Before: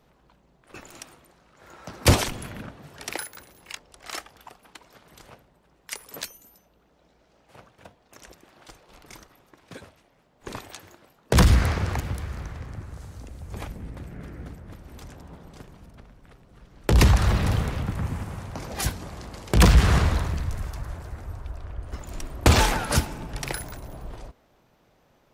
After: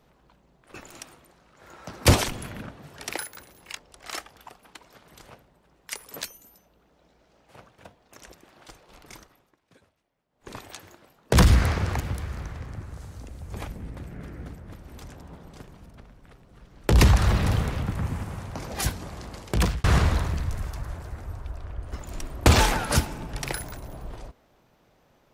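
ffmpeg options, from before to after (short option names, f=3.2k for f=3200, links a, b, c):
-filter_complex "[0:a]asplit=4[a][b][c][d];[a]atrim=end=9.59,asetpts=PTS-STARTPTS,afade=t=out:st=9.14:d=0.45:silence=0.149624[e];[b]atrim=start=9.59:end=10.28,asetpts=PTS-STARTPTS,volume=-16.5dB[f];[c]atrim=start=10.28:end=19.84,asetpts=PTS-STARTPTS,afade=t=in:d=0.45:silence=0.149624,afade=t=out:st=9.07:d=0.49[g];[d]atrim=start=19.84,asetpts=PTS-STARTPTS,afade=t=in:d=0.004:c=hsin[h];[e][f][g][h]concat=n=4:v=0:a=1"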